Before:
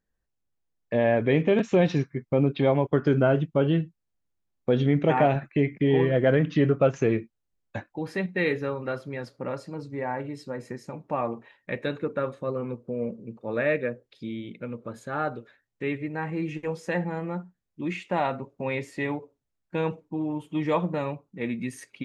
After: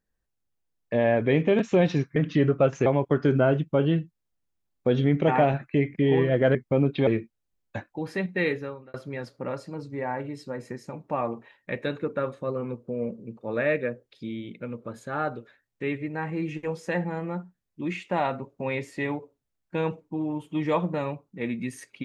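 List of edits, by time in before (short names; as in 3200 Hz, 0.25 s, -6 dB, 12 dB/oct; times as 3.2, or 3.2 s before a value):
2.16–2.68 swap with 6.37–7.07
8.44–8.94 fade out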